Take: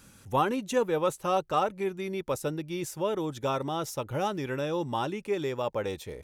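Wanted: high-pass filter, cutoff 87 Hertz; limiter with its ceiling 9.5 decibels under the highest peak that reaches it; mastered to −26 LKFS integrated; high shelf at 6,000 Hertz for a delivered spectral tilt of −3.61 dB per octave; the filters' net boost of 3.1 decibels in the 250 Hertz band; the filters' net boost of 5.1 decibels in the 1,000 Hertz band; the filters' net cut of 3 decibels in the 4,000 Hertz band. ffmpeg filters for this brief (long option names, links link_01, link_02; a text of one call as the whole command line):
ffmpeg -i in.wav -af "highpass=87,equalizer=frequency=250:width_type=o:gain=4,equalizer=frequency=1000:width_type=o:gain=6.5,equalizer=frequency=4000:width_type=o:gain=-6,highshelf=frequency=6000:gain=4.5,volume=3.5dB,alimiter=limit=-14dB:level=0:latency=1" out.wav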